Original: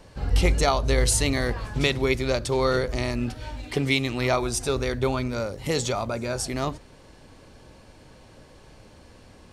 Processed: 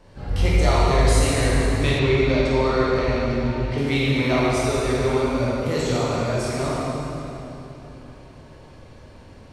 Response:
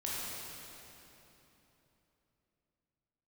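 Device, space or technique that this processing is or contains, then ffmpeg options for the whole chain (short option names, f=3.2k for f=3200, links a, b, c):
swimming-pool hall: -filter_complex "[1:a]atrim=start_sample=2205[a];[0:a][a]afir=irnorm=-1:irlink=0,highshelf=f=4.7k:g=-7.5,asettb=1/sr,asplit=3[b][c][d];[b]atrim=end=1.994[e];[c]atrim=start=1.99:end=3.78,asetpts=PTS-STARTPTS,afade=t=in:d=0.004:c=qsin,afade=t=out:st=1.786:d=0.004:c=qsin,lowpass=5.7k[f];[d]atrim=start=3.776[g];[e][f]acrossfade=d=0.004:c1=hsin:c2=qsin[h];[h][g]acrossfade=d=0.004:c1=qsin:c2=hsin"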